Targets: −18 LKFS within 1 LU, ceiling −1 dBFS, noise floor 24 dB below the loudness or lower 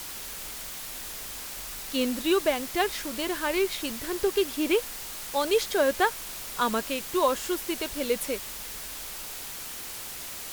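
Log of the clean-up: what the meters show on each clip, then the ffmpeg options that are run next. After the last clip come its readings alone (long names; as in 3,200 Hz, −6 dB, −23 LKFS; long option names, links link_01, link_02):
background noise floor −39 dBFS; target noise floor −53 dBFS; integrated loudness −29.0 LKFS; sample peak −11.0 dBFS; target loudness −18.0 LKFS
→ -af "afftdn=noise_reduction=14:noise_floor=-39"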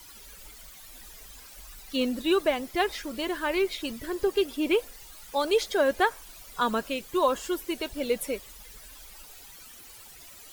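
background noise floor −49 dBFS; target noise floor −52 dBFS
→ -af "afftdn=noise_reduction=6:noise_floor=-49"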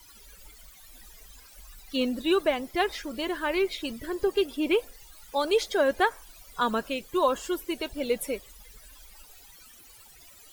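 background noise floor −52 dBFS; integrated loudness −28.0 LKFS; sample peak −11.5 dBFS; target loudness −18.0 LKFS
→ -af "volume=10dB"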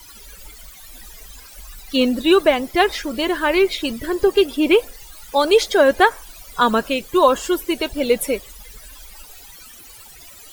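integrated loudness −18.0 LKFS; sample peak −1.5 dBFS; background noise floor −42 dBFS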